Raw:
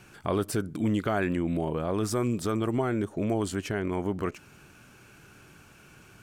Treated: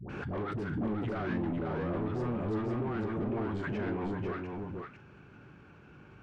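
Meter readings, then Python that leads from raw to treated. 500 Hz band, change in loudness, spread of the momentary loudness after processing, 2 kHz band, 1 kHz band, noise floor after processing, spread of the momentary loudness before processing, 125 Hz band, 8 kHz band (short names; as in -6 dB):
-6.0 dB, -5.5 dB, 14 LU, -4.5 dB, -5.0 dB, -55 dBFS, 4 LU, -3.5 dB, under -25 dB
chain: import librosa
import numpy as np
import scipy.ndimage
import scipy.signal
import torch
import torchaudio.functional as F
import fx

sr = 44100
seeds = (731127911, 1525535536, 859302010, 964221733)

p1 = scipy.signal.sosfilt(scipy.signal.butter(2, 49.0, 'highpass', fs=sr, output='sos'), x)
p2 = fx.notch(p1, sr, hz=650.0, q=15.0)
p3 = fx.dynamic_eq(p2, sr, hz=1600.0, q=1.5, threshold_db=-49.0, ratio=4.0, max_db=6)
p4 = 10.0 ** (-23.0 / 20.0) * np.tanh(p3 / 10.0 ** (-23.0 / 20.0))
p5 = fx.dispersion(p4, sr, late='highs', ms=96.0, hz=600.0)
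p6 = np.clip(p5, -10.0 ** (-31.0 / 20.0), 10.0 ** (-31.0 / 20.0))
p7 = fx.spacing_loss(p6, sr, db_at_10k=38)
p8 = fx.doubler(p7, sr, ms=40.0, db=-12.0)
p9 = p8 + fx.echo_single(p8, sr, ms=499, db=-4.0, dry=0)
y = fx.pre_swell(p9, sr, db_per_s=29.0)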